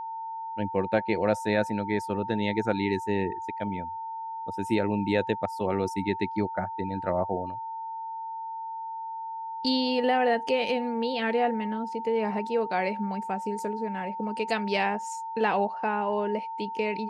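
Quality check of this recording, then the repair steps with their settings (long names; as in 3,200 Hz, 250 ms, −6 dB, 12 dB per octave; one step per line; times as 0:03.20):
whistle 900 Hz −33 dBFS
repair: notch filter 900 Hz, Q 30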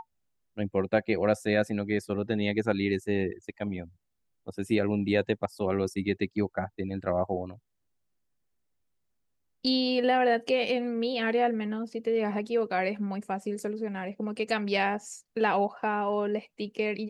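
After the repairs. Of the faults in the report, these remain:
none of them is left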